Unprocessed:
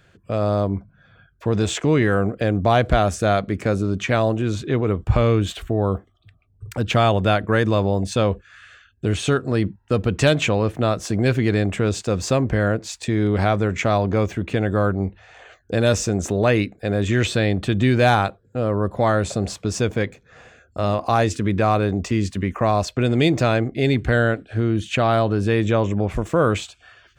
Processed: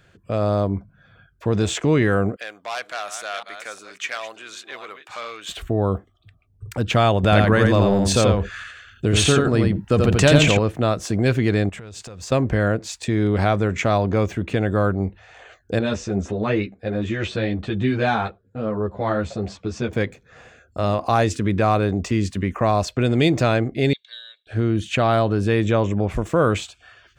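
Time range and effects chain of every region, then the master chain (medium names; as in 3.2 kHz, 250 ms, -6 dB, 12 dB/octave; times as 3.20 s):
2.36–5.49 s: chunks repeated in reverse 357 ms, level -11 dB + high-pass 1.3 kHz + transformer saturation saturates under 3.2 kHz
7.23–10.59 s: transient shaper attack +2 dB, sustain +11 dB + delay 86 ms -3.5 dB
11.69–12.32 s: compression 20:1, threshold -30 dBFS + peaking EQ 280 Hz -6 dB 1.8 oct
15.79–19.93 s: distance through air 120 m + three-phase chorus
23.93–24.47 s: ladder band-pass 3.8 kHz, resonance 90% + distance through air 56 m + comb 1.8 ms, depth 87%
whole clip: none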